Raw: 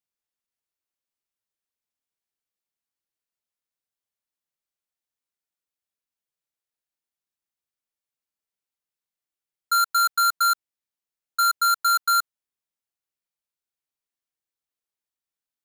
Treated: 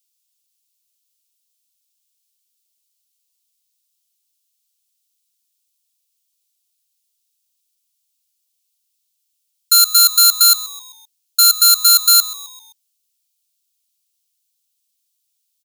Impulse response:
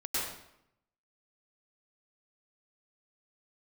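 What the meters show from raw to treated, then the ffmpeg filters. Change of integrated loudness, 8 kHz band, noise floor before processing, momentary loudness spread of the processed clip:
+11.0 dB, +17.5 dB, under -85 dBFS, 11 LU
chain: -filter_complex "[0:a]highpass=1.1k,aexciter=amount=5.6:drive=8.6:freq=2.6k,asplit=2[a][b];[b]asplit=4[c][d][e][f];[c]adelay=130,afreqshift=-120,volume=-17.5dB[g];[d]adelay=260,afreqshift=-240,volume=-23.9dB[h];[e]adelay=390,afreqshift=-360,volume=-30.3dB[i];[f]adelay=520,afreqshift=-480,volume=-36.6dB[j];[g][h][i][j]amix=inputs=4:normalize=0[k];[a][k]amix=inputs=2:normalize=0,volume=-2.5dB"

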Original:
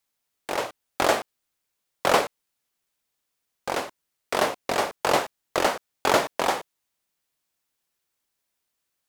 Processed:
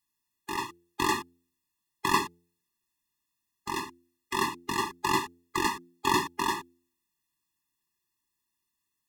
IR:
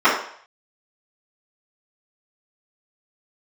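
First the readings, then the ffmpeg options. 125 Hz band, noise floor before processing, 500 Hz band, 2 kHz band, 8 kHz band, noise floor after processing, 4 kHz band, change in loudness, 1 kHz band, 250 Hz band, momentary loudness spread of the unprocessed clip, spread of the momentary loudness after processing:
-0.5 dB, -80 dBFS, -12.0 dB, -4.0 dB, -3.0 dB, -83 dBFS, -4.0 dB, -4.5 dB, -3.5 dB, -0.5 dB, 12 LU, 12 LU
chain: -af "bandreject=f=86.44:t=h:w=4,bandreject=f=172.88:t=h:w=4,bandreject=f=259.32:t=h:w=4,bandreject=f=345.76:t=h:w=4,bandreject=f=432.2:t=h:w=4,bandreject=f=518.64:t=h:w=4,bandreject=f=605.08:t=h:w=4,bandreject=f=691.52:t=h:w=4,afftfilt=real='re*eq(mod(floor(b*sr/1024/410),2),0)':imag='im*eq(mod(floor(b*sr/1024/410),2),0)':win_size=1024:overlap=0.75"

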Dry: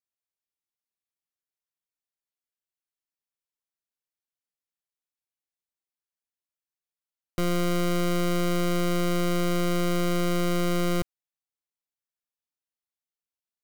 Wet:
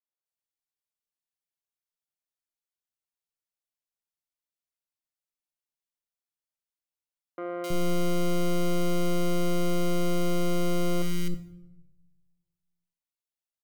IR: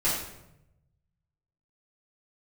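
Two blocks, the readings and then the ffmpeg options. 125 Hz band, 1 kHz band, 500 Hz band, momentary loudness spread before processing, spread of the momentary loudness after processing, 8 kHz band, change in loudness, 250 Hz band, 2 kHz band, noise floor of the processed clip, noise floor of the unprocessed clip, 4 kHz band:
-2.5 dB, -4.0 dB, -1.5 dB, 3 LU, 8 LU, -3.0 dB, -3.0 dB, -2.5 dB, -5.5 dB, under -85 dBFS, under -85 dBFS, -3.5 dB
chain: -filter_complex "[0:a]acrossover=split=310|1700[a][b][c];[c]adelay=260[d];[a]adelay=320[e];[e][b][d]amix=inputs=3:normalize=0,asplit=2[f][g];[1:a]atrim=start_sample=2205[h];[g][h]afir=irnorm=-1:irlink=0,volume=-19dB[i];[f][i]amix=inputs=2:normalize=0,volume=-4dB"

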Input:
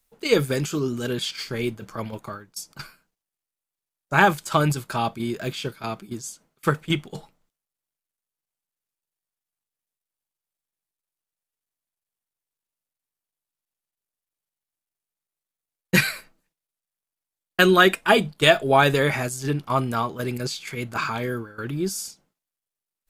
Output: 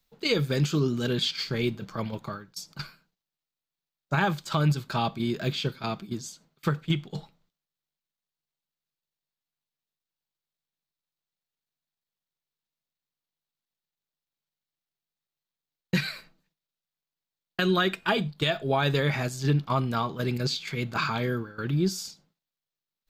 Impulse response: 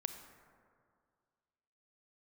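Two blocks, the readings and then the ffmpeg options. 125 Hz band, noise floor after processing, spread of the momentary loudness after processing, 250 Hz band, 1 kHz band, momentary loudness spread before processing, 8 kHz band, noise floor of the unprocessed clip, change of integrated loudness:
+0.5 dB, under -85 dBFS, 13 LU, -2.5 dB, -7.5 dB, 18 LU, -7.5 dB, under -85 dBFS, -5.5 dB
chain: -filter_complex "[0:a]equalizer=f=160:t=o:w=0.67:g=8,equalizer=f=4k:t=o:w=0.67:g=7,equalizer=f=10k:t=o:w=0.67:g=-12,alimiter=limit=-12.5dB:level=0:latency=1:release=341,asplit=2[a][b];[1:a]atrim=start_sample=2205,atrim=end_sample=3528,asetrate=30870,aresample=44100[c];[b][c]afir=irnorm=-1:irlink=0,volume=-12.5dB[d];[a][d]amix=inputs=2:normalize=0,volume=-4dB"

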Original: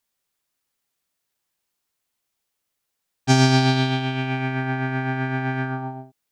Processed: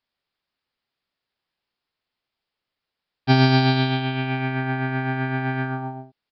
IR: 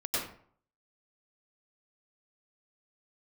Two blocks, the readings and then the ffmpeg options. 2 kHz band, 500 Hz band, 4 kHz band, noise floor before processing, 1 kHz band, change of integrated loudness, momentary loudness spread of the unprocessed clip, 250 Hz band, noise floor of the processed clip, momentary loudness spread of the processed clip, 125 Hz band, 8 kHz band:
0.0 dB, 0.0 dB, -0.5 dB, -79 dBFS, 0.0 dB, 0.0 dB, 14 LU, 0.0 dB, -85 dBFS, 14 LU, 0.0 dB, under -20 dB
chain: -af "aresample=11025,aresample=44100"

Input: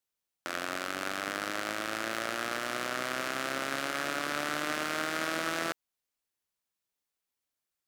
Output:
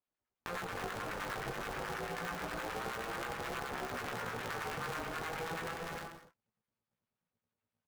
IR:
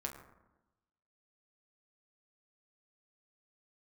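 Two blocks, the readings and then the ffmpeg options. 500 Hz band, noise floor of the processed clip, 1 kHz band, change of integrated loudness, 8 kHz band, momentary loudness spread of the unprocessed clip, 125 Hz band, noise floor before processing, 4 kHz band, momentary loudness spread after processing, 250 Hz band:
-4.5 dB, under -85 dBFS, -4.5 dB, -7.0 dB, -10.0 dB, 3 LU, +3.5 dB, under -85 dBFS, -9.5 dB, 3 LU, -7.0 dB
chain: -filter_complex "[0:a]lowpass=2.3k,bandreject=f=1.8k:w=14[a];[1:a]atrim=start_sample=2205,afade=t=out:st=0.35:d=0.01,atrim=end_sample=15876[b];[a][b]afir=irnorm=-1:irlink=0,acrossover=split=970[c][d];[c]aeval=exprs='val(0)*(1-1/2+1/2*cos(2*PI*9.4*n/s))':c=same[e];[d]aeval=exprs='val(0)*(1-1/2-1/2*cos(2*PI*9.4*n/s))':c=same[f];[e][f]amix=inputs=2:normalize=0,aecho=1:1:293:0.398,asubboost=boost=8:cutoff=54,asplit=2[g][h];[h]acrusher=samples=16:mix=1:aa=0.000001:lfo=1:lforange=16:lforate=3,volume=-6dB[i];[g][i]amix=inputs=2:normalize=0,flanger=delay=16.5:depth=3.6:speed=0.27,acompressor=threshold=-44dB:ratio=6,aeval=exprs='val(0)*sgn(sin(2*PI*170*n/s))':c=same,volume=7.5dB"

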